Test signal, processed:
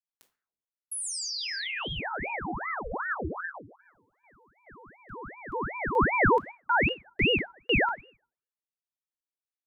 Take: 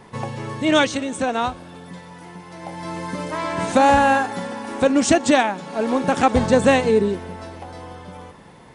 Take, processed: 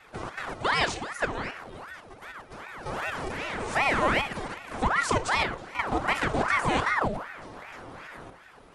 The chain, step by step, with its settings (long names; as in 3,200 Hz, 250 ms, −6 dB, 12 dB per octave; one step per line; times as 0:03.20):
output level in coarse steps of 10 dB
tape wow and flutter 29 cents
rectangular room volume 470 cubic metres, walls furnished, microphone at 0.85 metres
ring modulator whose carrier an LFO sweeps 940 Hz, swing 80%, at 2.6 Hz
level −1.5 dB